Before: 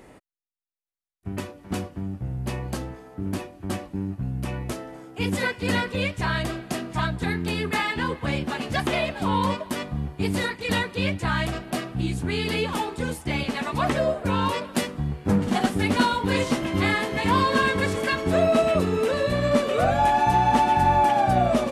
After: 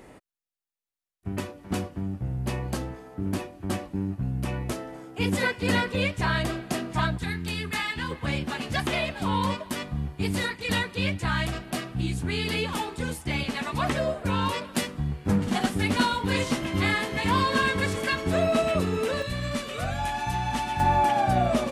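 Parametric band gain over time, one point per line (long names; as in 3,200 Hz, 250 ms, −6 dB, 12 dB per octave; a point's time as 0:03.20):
parametric band 500 Hz 2.8 octaves
0 dB
from 0:07.18 −10.5 dB
from 0:08.11 −4.5 dB
from 0:19.22 −14 dB
from 0:20.80 −3.5 dB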